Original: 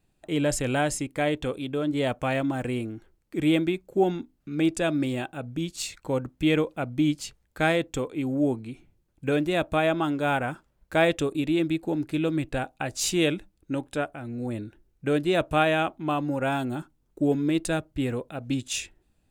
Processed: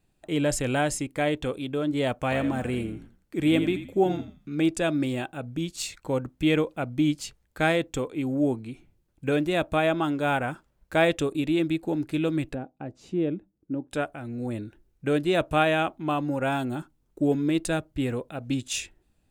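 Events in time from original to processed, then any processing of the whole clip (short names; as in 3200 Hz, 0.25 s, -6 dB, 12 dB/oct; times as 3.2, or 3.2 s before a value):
2.18–4.54 frequency-shifting echo 84 ms, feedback 30%, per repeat -47 Hz, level -10.5 dB
12.54–13.91 band-pass 240 Hz, Q 0.95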